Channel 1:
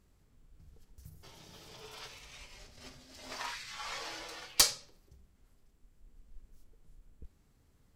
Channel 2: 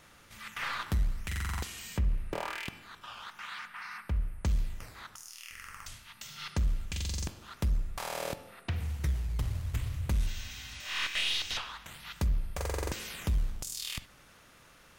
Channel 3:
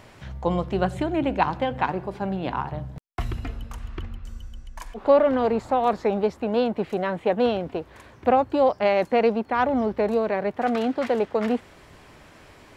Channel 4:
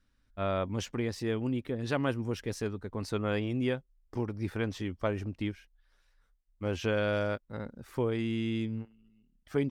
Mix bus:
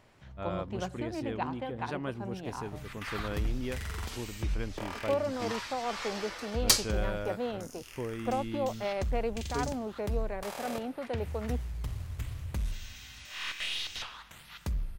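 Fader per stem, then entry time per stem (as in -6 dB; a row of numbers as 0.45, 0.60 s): +1.0, -4.0, -13.0, -6.5 dB; 2.10, 2.45, 0.00, 0.00 s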